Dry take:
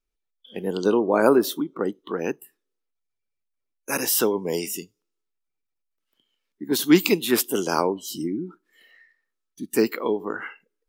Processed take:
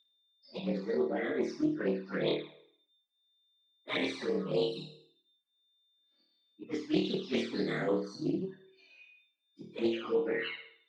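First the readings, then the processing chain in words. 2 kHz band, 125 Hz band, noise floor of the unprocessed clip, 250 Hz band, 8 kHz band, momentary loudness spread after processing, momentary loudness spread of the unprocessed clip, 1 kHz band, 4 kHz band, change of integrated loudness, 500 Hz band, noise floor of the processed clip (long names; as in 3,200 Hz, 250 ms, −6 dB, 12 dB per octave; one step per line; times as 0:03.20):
−8.5 dB, −5.5 dB, −80 dBFS, −9.5 dB, −28.0 dB, 10 LU, 17 LU, −15.5 dB, −9.0 dB, −10.0 dB, −9.5 dB, −78 dBFS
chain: partials spread apart or drawn together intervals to 115%
transient designer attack +3 dB, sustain −6 dB
low-pass filter 4,600 Hz 24 dB per octave
reversed playback
downward compressor 16 to 1, threshold −29 dBFS, peak gain reduction 19.5 dB
reversed playback
high-pass filter 130 Hz 24 dB per octave
dynamic equaliser 3,500 Hz, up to +6 dB, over −57 dBFS, Q 1.1
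steady tone 3,600 Hz −64 dBFS
on a send: flutter between parallel walls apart 4.5 metres, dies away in 0.58 s
on the sum: flanger swept by the level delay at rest 3.6 ms, full sweep at −25 dBFS
highs frequency-modulated by the lows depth 0.21 ms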